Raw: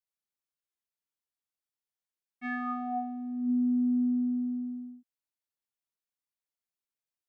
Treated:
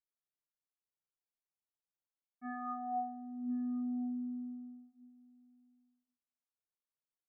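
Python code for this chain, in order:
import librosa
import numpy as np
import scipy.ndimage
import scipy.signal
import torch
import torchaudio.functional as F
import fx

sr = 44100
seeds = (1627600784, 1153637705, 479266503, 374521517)

p1 = scipy.signal.sosfilt(scipy.signal.butter(6, 1500.0, 'lowpass', fs=sr, output='sos'), x)
p2 = p1 + fx.echo_single(p1, sr, ms=1071, db=-24.0, dry=0)
p3 = fx.room_shoebox(p2, sr, seeds[0], volume_m3=350.0, walls='furnished', distance_m=0.51)
y = p3 * librosa.db_to_amplitude(-6.0)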